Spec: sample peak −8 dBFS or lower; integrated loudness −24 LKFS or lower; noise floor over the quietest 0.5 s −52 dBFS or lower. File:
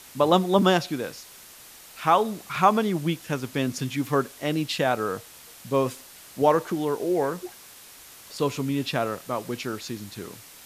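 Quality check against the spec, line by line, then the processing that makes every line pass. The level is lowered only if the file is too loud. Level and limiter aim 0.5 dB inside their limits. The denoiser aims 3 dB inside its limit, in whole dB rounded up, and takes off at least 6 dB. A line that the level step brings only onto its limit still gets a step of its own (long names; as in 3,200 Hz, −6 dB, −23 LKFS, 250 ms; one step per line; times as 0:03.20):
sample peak −5.5 dBFS: out of spec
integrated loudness −25.5 LKFS: in spec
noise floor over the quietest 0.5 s −47 dBFS: out of spec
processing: broadband denoise 8 dB, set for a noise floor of −47 dBFS
brickwall limiter −8.5 dBFS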